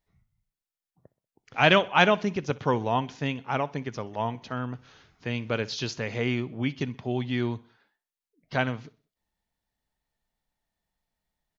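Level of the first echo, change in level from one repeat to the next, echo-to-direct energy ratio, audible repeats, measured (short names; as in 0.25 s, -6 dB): -22.5 dB, -6.0 dB, -21.5 dB, 3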